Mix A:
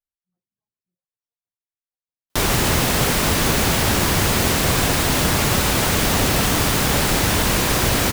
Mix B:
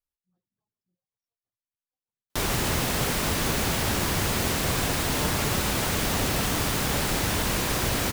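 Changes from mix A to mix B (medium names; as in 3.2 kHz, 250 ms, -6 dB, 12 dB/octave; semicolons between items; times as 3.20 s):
speech +6.0 dB; background -7.5 dB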